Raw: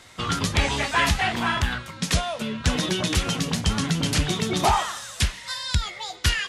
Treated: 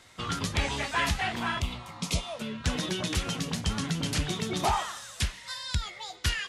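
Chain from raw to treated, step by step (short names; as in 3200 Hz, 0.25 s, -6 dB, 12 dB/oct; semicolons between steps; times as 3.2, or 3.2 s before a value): spectral repair 1.62–2.31, 700–2000 Hz after; gain -6.5 dB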